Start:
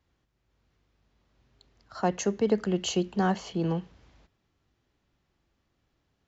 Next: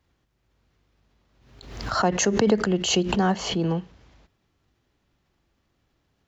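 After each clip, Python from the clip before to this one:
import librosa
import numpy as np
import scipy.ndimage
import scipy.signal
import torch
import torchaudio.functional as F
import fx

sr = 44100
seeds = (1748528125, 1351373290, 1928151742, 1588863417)

y = fx.pre_swell(x, sr, db_per_s=63.0)
y = y * 10.0 ** (3.5 / 20.0)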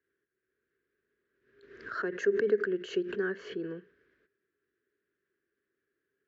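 y = fx.double_bandpass(x, sr, hz=810.0, octaves=2.0)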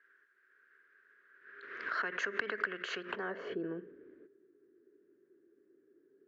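y = fx.filter_sweep_bandpass(x, sr, from_hz=1500.0, to_hz=330.0, start_s=2.97, end_s=3.6, q=2.9)
y = fx.spectral_comp(y, sr, ratio=2.0)
y = y * 10.0 ** (4.0 / 20.0)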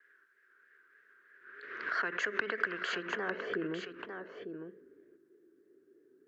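y = fx.vibrato(x, sr, rate_hz=3.2, depth_cents=70.0)
y = y + 10.0 ** (-7.5 / 20.0) * np.pad(y, (int(901 * sr / 1000.0), 0))[:len(y)]
y = y * 10.0 ** (2.0 / 20.0)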